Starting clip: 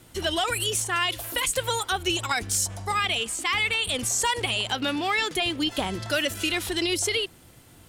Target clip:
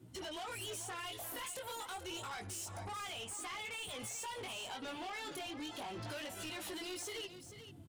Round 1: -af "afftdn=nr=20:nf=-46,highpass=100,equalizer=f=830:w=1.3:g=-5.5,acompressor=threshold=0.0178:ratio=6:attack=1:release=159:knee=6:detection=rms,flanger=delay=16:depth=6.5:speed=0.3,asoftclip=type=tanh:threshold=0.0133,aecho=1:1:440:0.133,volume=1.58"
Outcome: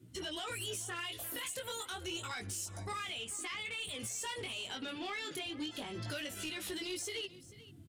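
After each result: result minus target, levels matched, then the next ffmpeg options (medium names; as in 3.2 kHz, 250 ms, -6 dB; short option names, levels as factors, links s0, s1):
saturation: distortion -8 dB; echo-to-direct -6.5 dB; 1 kHz band -4.0 dB
-af "afftdn=nr=20:nf=-46,highpass=100,equalizer=f=830:w=1.3:g=-5.5,acompressor=threshold=0.0178:ratio=6:attack=1:release=159:knee=6:detection=rms,flanger=delay=16:depth=6.5:speed=0.3,asoftclip=type=tanh:threshold=0.00562,aecho=1:1:440:0.133,volume=1.58"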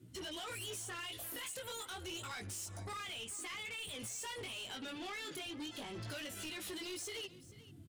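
echo-to-direct -6.5 dB; 1 kHz band -4.5 dB
-af "afftdn=nr=20:nf=-46,highpass=100,equalizer=f=830:w=1.3:g=-5.5,acompressor=threshold=0.0178:ratio=6:attack=1:release=159:knee=6:detection=rms,flanger=delay=16:depth=6.5:speed=0.3,asoftclip=type=tanh:threshold=0.00562,aecho=1:1:440:0.282,volume=1.58"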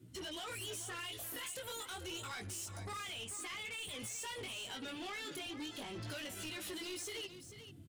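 1 kHz band -4.5 dB
-af "afftdn=nr=20:nf=-46,highpass=100,equalizer=f=830:w=1.3:g=6,acompressor=threshold=0.0178:ratio=6:attack=1:release=159:knee=6:detection=rms,flanger=delay=16:depth=6.5:speed=0.3,asoftclip=type=tanh:threshold=0.00562,aecho=1:1:440:0.282,volume=1.58"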